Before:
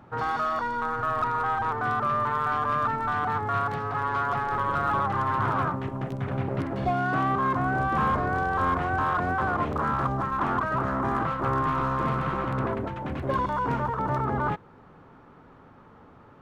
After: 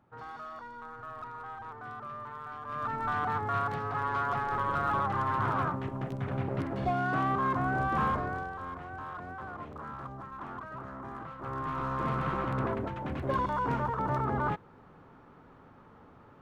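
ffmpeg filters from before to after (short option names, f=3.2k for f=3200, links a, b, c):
-af "volume=8dB,afade=t=in:st=2.64:d=0.43:silence=0.251189,afade=t=out:st=8.03:d=0.55:silence=0.266073,afade=t=in:st=11.34:d=0.92:silence=0.251189"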